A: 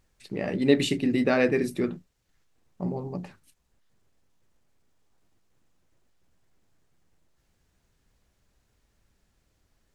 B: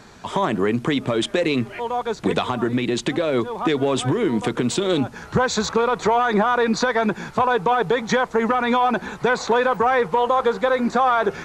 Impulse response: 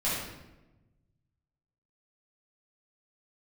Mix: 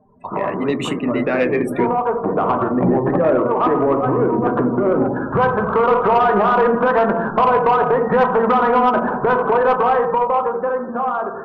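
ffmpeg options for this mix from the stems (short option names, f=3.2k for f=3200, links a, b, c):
-filter_complex "[0:a]equalizer=f=4.5k:w=1.8:g=-14.5,acrossover=split=210|3000[a][b][c];[b]acompressor=threshold=-29dB:ratio=6[d];[a][d][c]amix=inputs=3:normalize=0,volume=3dB[e];[1:a]lowpass=f=1.4k:w=0.5412,lowpass=f=1.4k:w=1.3066,acompressor=threshold=-22dB:ratio=6,volume=-7.5dB,asplit=2[f][g];[g]volume=-9.5dB[h];[2:a]atrim=start_sample=2205[i];[h][i]afir=irnorm=-1:irlink=0[j];[e][f][j]amix=inputs=3:normalize=0,afftdn=nr=33:nf=-44,dynaudnorm=f=270:g=13:m=11dB,asplit=2[k][l];[l]highpass=f=720:p=1,volume=15dB,asoftclip=type=tanh:threshold=-4.5dB[m];[k][m]amix=inputs=2:normalize=0,lowpass=f=2.6k:p=1,volume=-6dB"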